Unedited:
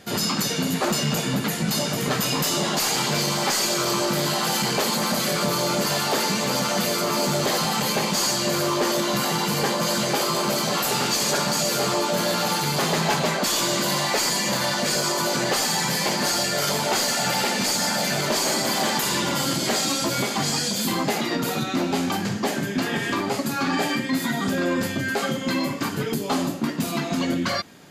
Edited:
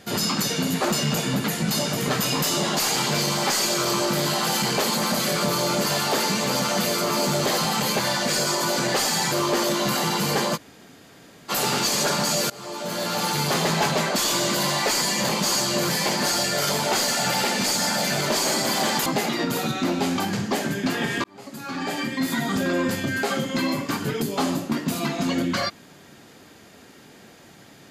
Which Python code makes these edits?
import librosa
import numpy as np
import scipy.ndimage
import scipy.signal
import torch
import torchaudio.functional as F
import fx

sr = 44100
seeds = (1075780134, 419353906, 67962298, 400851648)

y = fx.edit(x, sr, fx.swap(start_s=8.0, length_s=0.6, other_s=14.57, other_length_s=1.32),
    fx.room_tone_fill(start_s=9.84, length_s=0.94, crossfade_s=0.04),
    fx.fade_in_from(start_s=11.78, length_s=0.86, floor_db=-23.5),
    fx.cut(start_s=19.06, length_s=1.92),
    fx.fade_in_span(start_s=23.16, length_s=1.11), tone=tone)